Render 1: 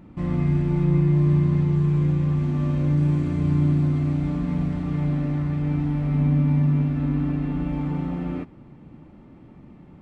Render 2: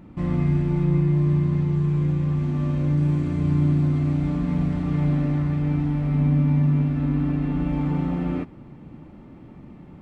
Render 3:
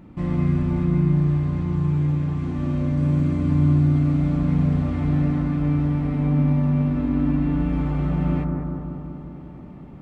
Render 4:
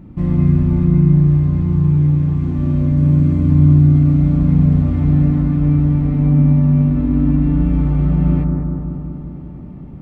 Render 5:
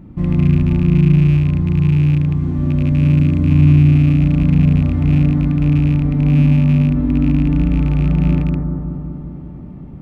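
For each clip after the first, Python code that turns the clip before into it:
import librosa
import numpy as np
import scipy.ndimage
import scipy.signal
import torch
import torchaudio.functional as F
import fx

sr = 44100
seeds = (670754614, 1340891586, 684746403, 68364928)

y1 = fx.rider(x, sr, range_db=3, speed_s=2.0)
y2 = fx.echo_bbd(y1, sr, ms=195, stages=2048, feedback_pct=68, wet_db=-3.5)
y3 = fx.low_shelf(y2, sr, hz=330.0, db=12.0)
y3 = y3 * 10.0 ** (-2.0 / 20.0)
y4 = fx.rattle_buzz(y3, sr, strikes_db=-11.0, level_db=-23.0)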